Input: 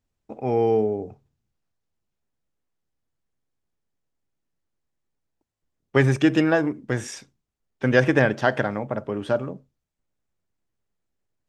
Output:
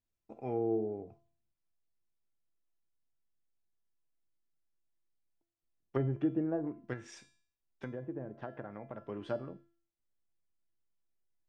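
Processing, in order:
treble cut that deepens with the level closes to 570 Hz, closed at −16 dBFS
0:06.93–0:09.08: downward compressor 3 to 1, threshold −28 dBFS, peak gain reduction 10.5 dB
tuned comb filter 340 Hz, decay 0.51 s, mix 80%

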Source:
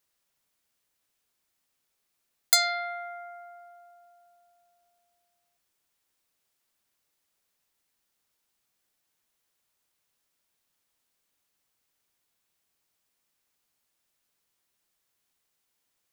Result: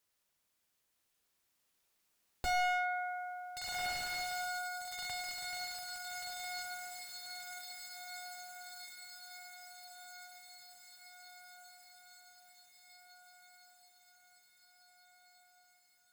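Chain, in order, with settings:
source passing by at 0:06.64, 12 m/s, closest 8.3 metres
feedback delay with all-pass diffusion 1,528 ms, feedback 60%, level −7 dB
slew-rate limiting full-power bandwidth 6.6 Hz
level +17 dB

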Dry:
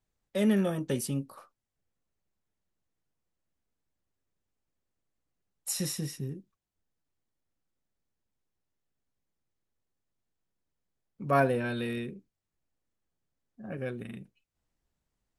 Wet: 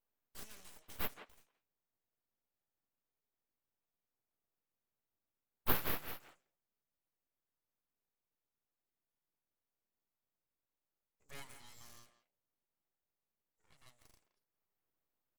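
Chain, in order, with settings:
resonant band-pass 7,400 Hz, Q 6.9
full-wave rectification
far-end echo of a speakerphone 170 ms, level −10 dB
level +11.5 dB

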